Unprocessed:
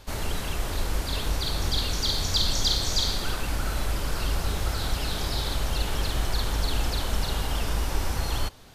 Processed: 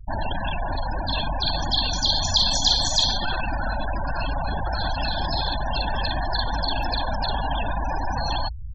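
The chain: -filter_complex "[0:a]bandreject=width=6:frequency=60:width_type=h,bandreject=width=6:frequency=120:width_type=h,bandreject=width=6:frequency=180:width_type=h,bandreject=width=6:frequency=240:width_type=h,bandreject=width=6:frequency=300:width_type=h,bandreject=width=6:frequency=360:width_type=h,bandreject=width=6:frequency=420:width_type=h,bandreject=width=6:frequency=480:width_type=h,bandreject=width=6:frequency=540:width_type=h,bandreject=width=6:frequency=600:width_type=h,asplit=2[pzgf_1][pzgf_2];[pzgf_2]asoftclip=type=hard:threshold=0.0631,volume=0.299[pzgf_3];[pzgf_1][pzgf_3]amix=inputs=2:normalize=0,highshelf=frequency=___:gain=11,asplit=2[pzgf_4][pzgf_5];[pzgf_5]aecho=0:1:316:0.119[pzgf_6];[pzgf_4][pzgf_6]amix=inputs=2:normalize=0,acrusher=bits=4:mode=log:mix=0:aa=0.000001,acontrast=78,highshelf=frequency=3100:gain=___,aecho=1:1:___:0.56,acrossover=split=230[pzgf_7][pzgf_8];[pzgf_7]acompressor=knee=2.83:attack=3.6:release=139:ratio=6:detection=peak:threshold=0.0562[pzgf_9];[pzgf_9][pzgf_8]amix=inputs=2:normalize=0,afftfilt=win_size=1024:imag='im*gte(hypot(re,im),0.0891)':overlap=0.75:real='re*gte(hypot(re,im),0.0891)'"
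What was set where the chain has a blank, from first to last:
7900, -8.5, 1.2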